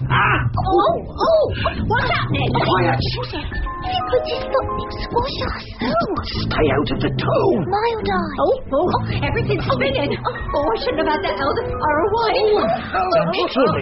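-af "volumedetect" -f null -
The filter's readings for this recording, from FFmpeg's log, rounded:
mean_volume: -18.8 dB
max_volume: -3.5 dB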